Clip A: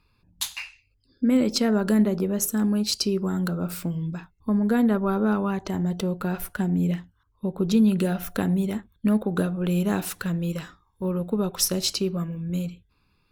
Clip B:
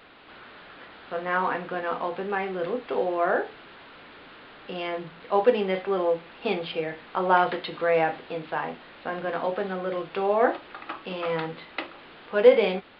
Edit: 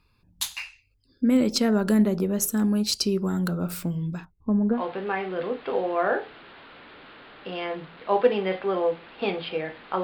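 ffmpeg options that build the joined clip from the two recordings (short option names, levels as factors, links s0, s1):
-filter_complex "[0:a]asettb=1/sr,asplit=3[s0][s1][s2];[s0]atrim=end=4.254[s3];[s1]atrim=start=4.25:end=4.83,asetpts=PTS-STARTPTS,afade=t=in:d=0.004:c=qsin,afade=t=out:st=0.576:d=0.004:c=qsin,lowpass=1000[s4];[s2]atrim=start=4.826[s5];[s3][s4]acrossfade=d=0.004:c1=hsin:c2=qsin[s6];[s6][s5]acrossfade=d=0.004:c1=qsin:c2=hsin,apad=whole_dur=10.03,atrim=end=10.03,atrim=end=4.83,asetpts=PTS-STARTPTS[s7];[1:a]atrim=start=1.94:end=7.26,asetpts=PTS-STARTPTS[s8];[s7][s8]acrossfade=d=0.12:c1=tri:c2=tri"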